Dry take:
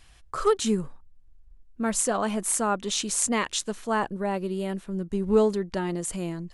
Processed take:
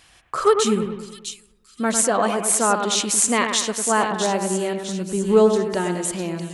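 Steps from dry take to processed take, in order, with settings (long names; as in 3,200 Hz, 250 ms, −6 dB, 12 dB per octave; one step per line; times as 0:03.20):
high-pass filter 230 Hz 6 dB per octave
echo with a time of its own for lows and highs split 2,600 Hz, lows 101 ms, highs 655 ms, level −6.5 dB
level +6.5 dB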